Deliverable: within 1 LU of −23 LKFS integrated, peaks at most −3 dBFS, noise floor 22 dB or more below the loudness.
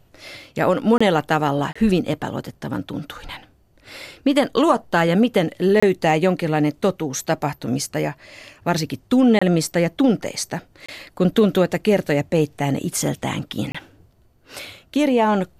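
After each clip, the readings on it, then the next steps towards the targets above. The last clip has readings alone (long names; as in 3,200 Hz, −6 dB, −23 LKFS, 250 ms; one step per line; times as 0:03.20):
number of dropouts 6; longest dropout 25 ms; integrated loudness −20.0 LKFS; sample peak −3.5 dBFS; target loudness −23.0 LKFS
→ repair the gap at 0:00.98/0:01.73/0:05.80/0:09.39/0:10.86/0:13.72, 25 ms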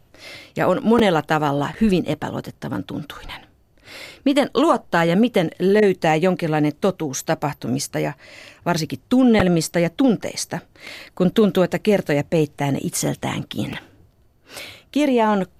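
number of dropouts 0; integrated loudness −20.0 LKFS; sample peak −2.5 dBFS; target loudness −23.0 LKFS
→ level −3 dB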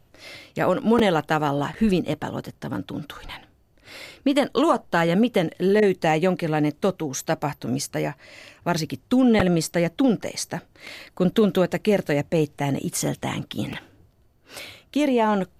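integrated loudness −23.0 LKFS; sample peak −5.5 dBFS; background noise floor −59 dBFS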